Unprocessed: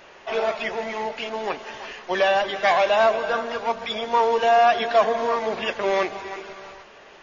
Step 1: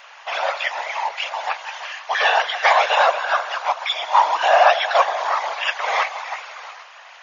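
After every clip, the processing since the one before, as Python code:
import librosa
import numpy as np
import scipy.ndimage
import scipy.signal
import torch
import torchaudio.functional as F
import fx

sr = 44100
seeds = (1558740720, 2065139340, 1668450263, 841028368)

y = scipy.signal.sosfilt(scipy.signal.butter(8, 710.0, 'highpass', fs=sr, output='sos'), x)
y = fx.whisperise(y, sr, seeds[0])
y = y * librosa.db_to_amplitude(6.0)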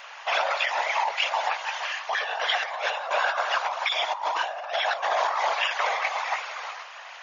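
y = fx.over_compress(x, sr, threshold_db=-24.0, ratio=-1.0)
y = y * librosa.db_to_amplitude(-3.0)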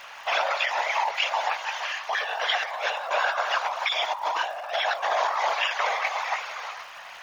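y = fx.dmg_crackle(x, sr, seeds[1], per_s=390.0, level_db=-44.0)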